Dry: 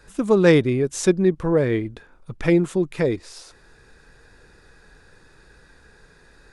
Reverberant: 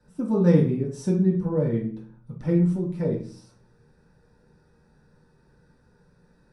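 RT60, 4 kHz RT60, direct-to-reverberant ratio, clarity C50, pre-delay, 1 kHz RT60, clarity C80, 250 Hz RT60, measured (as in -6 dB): 0.45 s, 0.40 s, -6.0 dB, 6.0 dB, 3 ms, 0.40 s, 12.0 dB, 0.75 s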